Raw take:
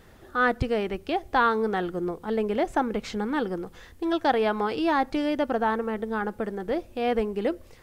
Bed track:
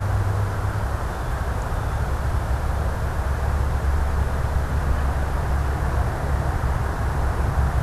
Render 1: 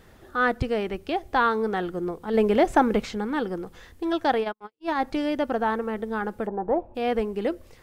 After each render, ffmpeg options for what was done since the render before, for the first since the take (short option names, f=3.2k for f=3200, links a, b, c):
-filter_complex "[0:a]asplit=3[a][b][c];[a]afade=t=out:st=2.33:d=0.02[d];[b]acontrast=50,afade=t=in:st=2.33:d=0.02,afade=t=out:st=3.04:d=0.02[e];[c]afade=t=in:st=3.04:d=0.02[f];[d][e][f]amix=inputs=3:normalize=0,asplit=3[g][h][i];[g]afade=t=out:st=4.4:d=0.02[j];[h]agate=range=-59dB:threshold=-23dB:ratio=16:release=100:detection=peak,afade=t=in:st=4.4:d=0.02,afade=t=out:st=5.01:d=0.02[k];[i]afade=t=in:st=5.01:d=0.02[l];[j][k][l]amix=inputs=3:normalize=0,asplit=3[m][n][o];[m]afade=t=out:st=6.46:d=0.02[p];[n]lowpass=f=880:t=q:w=4.7,afade=t=in:st=6.46:d=0.02,afade=t=out:st=6.94:d=0.02[q];[o]afade=t=in:st=6.94:d=0.02[r];[p][q][r]amix=inputs=3:normalize=0"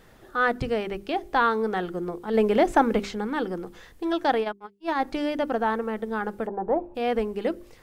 -af "equalizer=f=73:t=o:w=0.36:g=-12.5,bandreject=f=50:t=h:w=6,bandreject=f=100:t=h:w=6,bandreject=f=150:t=h:w=6,bandreject=f=200:t=h:w=6,bandreject=f=250:t=h:w=6,bandreject=f=300:t=h:w=6,bandreject=f=350:t=h:w=6,bandreject=f=400:t=h:w=6"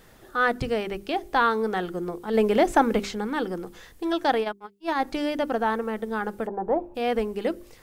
-af "highshelf=f=4.8k:g=6.5"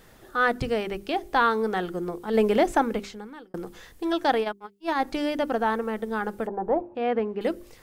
-filter_complex "[0:a]asettb=1/sr,asplit=3[a][b][c];[a]atrim=end=6.814[d];[b]atrim=start=6.81:end=7.41,asetpts=PTS-STARTPTS,afade=t=in:d=0.004:c=qsin,afade=t=out:st=0.596:d=0.004:c=qsin,highpass=100,lowpass=2.2k[e];[c]atrim=start=7.406[f];[d][e]acrossfade=d=0.004:c1=hsin:c2=qsin[g];[g][f]acrossfade=d=0.004:c1=qsin:c2=hsin,asplit=2[h][i];[h]atrim=end=3.54,asetpts=PTS-STARTPTS,afade=t=out:st=2.5:d=1.04[j];[i]atrim=start=3.54,asetpts=PTS-STARTPTS,afade=t=in:d=0.004:c=hsin[k];[j][k]concat=n=2:v=0:a=1"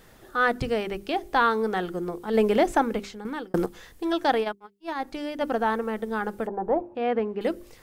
-filter_complex "[0:a]asplit=5[a][b][c][d][e];[a]atrim=end=3.252[f];[b]atrim=start=3.248:end=3.662,asetpts=PTS-STARTPTS,volume=10dB[g];[c]atrim=start=3.658:end=4.552[h];[d]atrim=start=4.548:end=5.412,asetpts=PTS-STARTPTS,volume=-5.5dB[i];[e]atrim=start=5.408[j];[f][g]acrossfade=d=0.004:c1=hsin:c2=hsin[k];[k][h]acrossfade=d=0.004:c1=hsin:c2=hsin[l];[l][i]acrossfade=d=0.004:c1=hsin:c2=hsin[m];[m][j]acrossfade=d=0.004:c1=hsin:c2=hsin"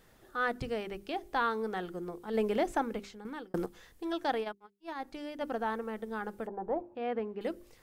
-af "volume=-9dB"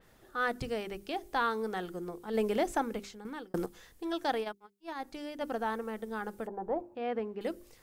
-af "adynamicequalizer=threshold=0.00224:dfrequency=4400:dqfactor=0.7:tfrequency=4400:tqfactor=0.7:attack=5:release=100:ratio=0.375:range=3:mode=boostabove:tftype=highshelf"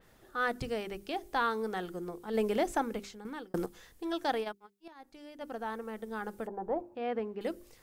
-filter_complex "[0:a]asplit=2[a][b];[a]atrim=end=4.88,asetpts=PTS-STARTPTS,afade=t=out:st=4.876:d=0.004:c=hsin:silence=0.16788[c];[b]atrim=start=4.88,asetpts=PTS-STARTPTS,afade=t=in:d=1.47:silence=0.16788[d];[c][d]concat=n=2:v=0:a=1"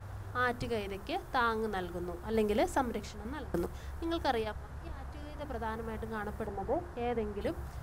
-filter_complex "[1:a]volume=-22dB[a];[0:a][a]amix=inputs=2:normalize=0"